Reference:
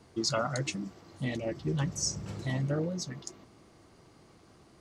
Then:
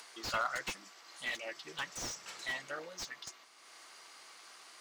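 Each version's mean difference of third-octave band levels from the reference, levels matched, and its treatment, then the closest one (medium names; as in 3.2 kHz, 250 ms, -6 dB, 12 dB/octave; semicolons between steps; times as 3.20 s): 13.0 dB: high-pass 1.4 kHz 12 dB/octave; upward compressor, threshold -53 dBFS; slew-rate limiter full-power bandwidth 26 Hz; trim +6 dB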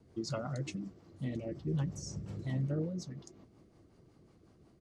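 5.0 dB: tilt shelf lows +5 dB, about 690 Hz; rotary cabinet horn 5.5 Hz; speakerphone echo 90 ms, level -29 dB; trim -5.5 dB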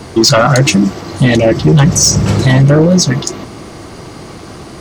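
3.0 dB: band-stop 7.3 kHz, Q 28; saturation -25.5 dBFS, distortion -16 dB; loudness maximiser +29.5 dB; trim -1 dB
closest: third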